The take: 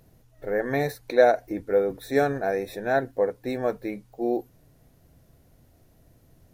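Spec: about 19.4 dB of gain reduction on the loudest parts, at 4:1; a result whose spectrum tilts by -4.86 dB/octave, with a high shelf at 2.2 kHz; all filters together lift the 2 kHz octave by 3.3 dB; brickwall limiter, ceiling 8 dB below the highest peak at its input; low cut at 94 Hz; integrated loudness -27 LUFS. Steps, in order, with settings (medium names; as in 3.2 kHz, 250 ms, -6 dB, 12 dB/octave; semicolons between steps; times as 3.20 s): high-pass 94 Hz; peaking EQ 2 kHz +6.5 dB; treble shelf 2.2 kHz -4.5 dB; compression 4:1, threshold -36 dBFS; trim +14.5 dB; peak limiter -15.5 dBFS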